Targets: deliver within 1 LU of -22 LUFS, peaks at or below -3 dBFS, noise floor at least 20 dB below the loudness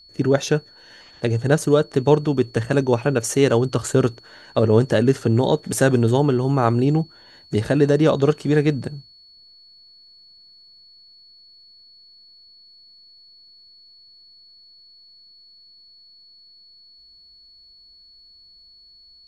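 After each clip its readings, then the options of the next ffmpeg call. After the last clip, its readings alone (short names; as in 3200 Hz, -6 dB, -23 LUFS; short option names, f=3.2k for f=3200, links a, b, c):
steady tone 4400 Hz; tone level -47 dBFS; loudness -19.5 LUFS; peak -2.0 dBFS; loudness target -22.0 LUFS
-> -af "bandreject=f=4.4k:w=30"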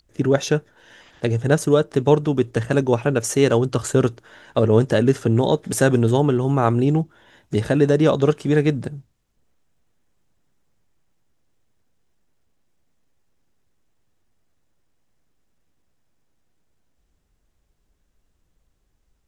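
steady tone none; loudness -19.5 LUFS; peak -2.0 dBFS; loudness target -22.0 LUFS
-> -af "volume=-2.5dB"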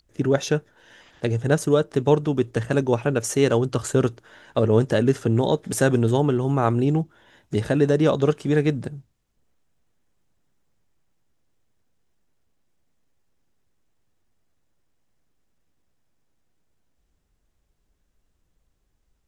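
loudness -22.0 LUFS; peak -4.5 dBFS; noise floor -71 dBFS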